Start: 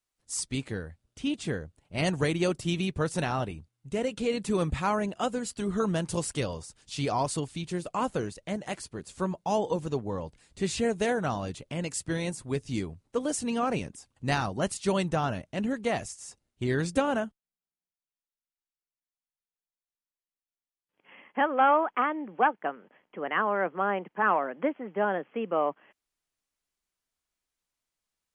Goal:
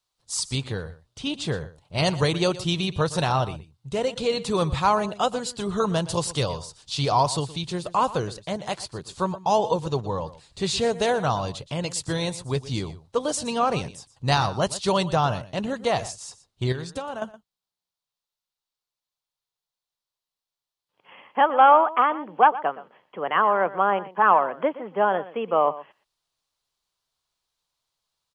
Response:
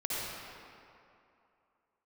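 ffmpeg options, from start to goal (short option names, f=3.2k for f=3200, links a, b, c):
-filter_complex "[0:a]equalizer=f=125:t=o:w=1:g=7,equalizer=f=250:t=o:w=1:g=-5,equalizer=f=500:t=o:w=1:g=3,equalizer=f=1k:t=o:w=1:g=8,equalizer=f=2k:t=o:w=1:g=-4,equalizer=f=4k:t=o:w=1:g=11,asettb=1/sr,asplit=3[a][b][c];[a]atrim=end=16.724[d];[b]atrim=start=16.72:end=17.22,asetpts=PTS-STARTPTS,afade=t=in:d=0.004:c=qsin,afade=t=out:st=0.496:d=0.004:c=qsin,acompressor=threshold=-35dB:ratio=3[e];[c]atrim=start=17.216[f];[d][e]acrossfade=d=0.004:c1=hsin:c2=qsin[g];[g][f]acrossfade=d=0.004:c1=qsin:c2=hsin,aecho=1:1:120:0.15,volume=1.5dB"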